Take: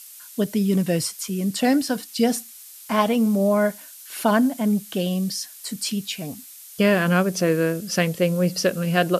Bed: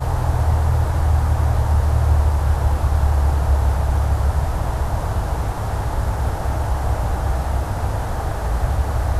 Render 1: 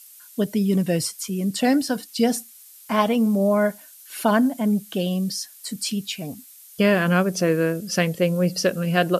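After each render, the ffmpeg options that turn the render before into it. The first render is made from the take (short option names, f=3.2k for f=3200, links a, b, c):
-af "afftdn=nr=6:nf=-43"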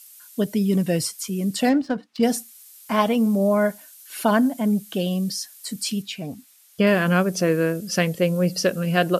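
-filter_complex "[0:a]asettb=1/sr,asplit=3[a][b][c];[a]atrim=end=1.694[d];[b]atrim=start=1.69:end=2.23,asetpts=PTS-STARTPTS,afade=t=in:d=0.004:c=qsin,afade=t=out:st=0.536:d=0.004:c=qsin,adynamicsmooth=sensitivity=1.5:basefreq=1.5k[e];[c]atrim=start=2.226[f];[d][e]acrossfade=d=0.004:c1=hsin:c2=qsin[g];[g][f]acrossfade=d=0.004:c1=qsin:c2=hsin,asettb=1/sr,asplit=3[h][i][j];[h]atrim=end=6.024[k];[i]atrim=start=6.02:end=6.87,asetpts=PTS-STARTPTS,afade=t=in:d=0.004:c=qsin,afade=t=out:st=0.846:d=0.004:c=qsin,aemphasis=mode=reproduction:type=cd[l];[j]atrim=start=6.866[m];[k][l]acrossfade=d=0.004:c1=hsin:c2=qsin[n];[n][m]acrossfade=d=0.004:c1=qsin:c2=hsin"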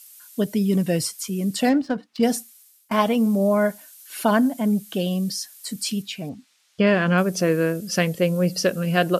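-filter_complex "[0:a]asettb=1/sr,asplit=3[a][b][c];[a]atrim=end=6.294[d];[b]atrim=start=6.29:end=7.18,asetpts=PTS-STARTPTS,afade=t=in:d=0.004:c=qsin,afade=t=out:st=0.886:d=0.004:c=qsin,lowpass=5.1k[e];[c]atrim=start=7.176[f];[d][e]acrossfade=d=0.004:c1=hsin:c2=qsin[g];[g][f]acrossfade=d=0.004:c1=qsin:c2=hsin,asplit=2[h][i];[h]atrim=end=2.91,asetpts=PTS-STARTPTS,afade=t=out:st=2.34:d=0.57:silence=0.0841395[j];[i]atrim=start=2.91,asetpts=PTS-STARTPTS,afade=t=in:d=0.004:c=hsin:silence=0.0841395[k];[j][k]concat=n=2:v=0:a=1"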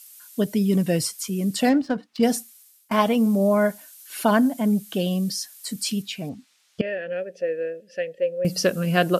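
-filter_complex "[0:a]asettb=1/sr,asplit=3[a][b][c];[a]atrim=end=6.814[d];[b]atrim=start=6.81:end=8.45,asetpts=PTS-STARTPTS,afade=t=in:d=0.004:c=qsin,afade=t=out:st=1.636:d=0.004:c=qsin,asplit=3[e][f][g];[e]bandpass=f=530:t=q:w=8,volume=0dB[h];[f]bandpass=f=1.84k:t=q:w=8,volume=-6dB[i];[g]bandpass=f=2.48k:t=q:w=8,volume=-9dB[j];[h][i][j]amix=inputs=3:normalize=0[k];[c]atrim=start=8.446[l];[d][k]acrossfade=d=0.004:c1=hsin:c2=qsin[m];[m][l]acrossfade=d=0.004:c1=qsin:c2=hsin"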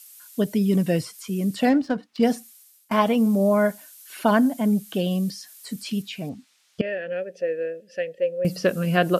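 -filter_complex "[0:a]acrossover=split=3300[a][b];[b]acompressor=threshold=-39dB:ratio=4:attack=1:release=60[c];[a][c]amix=inputs=2:normalize=0"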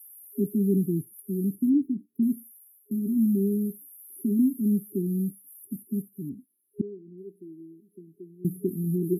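-af "afftfilt=real='re*(1-between(b*sr/4096,410,10000))':imag='im*(1-between(b*sr/4096,410,10000))':win_size=4096:overlap=0.75,highpass=f=190:p=1"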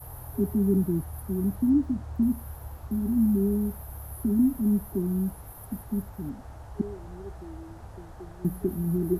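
-filter_complex "[1:a]volume=-22.5dB[a];[0:a][a]amix=inputs=2:normalize=0"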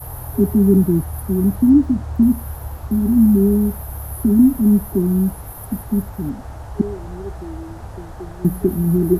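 -af "volume=10.5dB"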